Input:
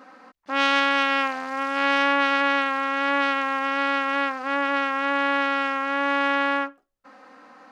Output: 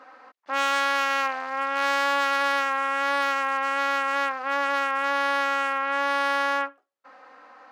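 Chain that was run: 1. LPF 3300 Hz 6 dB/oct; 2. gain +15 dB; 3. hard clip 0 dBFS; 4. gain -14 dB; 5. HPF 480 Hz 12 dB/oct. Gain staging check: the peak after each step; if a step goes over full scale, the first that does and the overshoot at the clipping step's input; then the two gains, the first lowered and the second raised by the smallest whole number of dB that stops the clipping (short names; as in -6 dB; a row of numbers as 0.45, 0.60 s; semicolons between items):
-7.5, +7.5, 0.0, -14.0, -9.5 dBFS; step 2, 7.5 dB; step 2 +7 dB, step 4 -6 dB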